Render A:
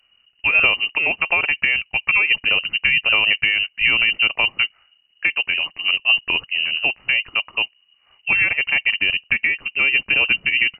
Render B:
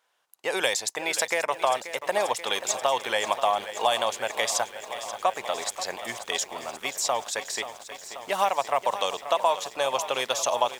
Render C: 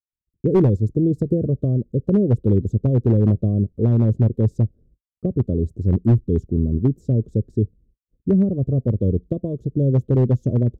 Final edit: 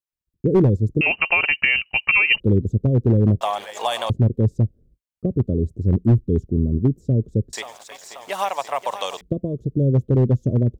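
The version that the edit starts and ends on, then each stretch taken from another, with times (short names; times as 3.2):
C
1.01–2.4 from A
3.41–4.1 from B
7.53–9.21 from B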